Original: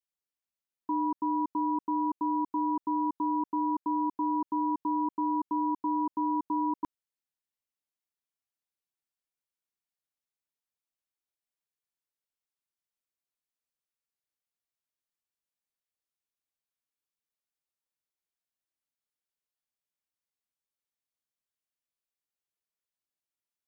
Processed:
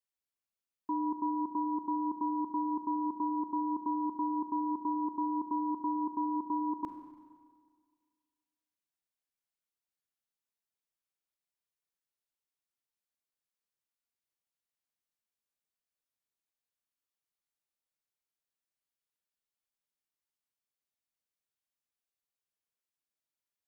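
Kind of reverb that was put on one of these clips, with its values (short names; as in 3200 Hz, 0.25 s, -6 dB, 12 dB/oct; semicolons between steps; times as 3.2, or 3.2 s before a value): Schroeder reverb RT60 1.8 s, combs from 32 ms, DRR 7.5 dB; gain -3 dB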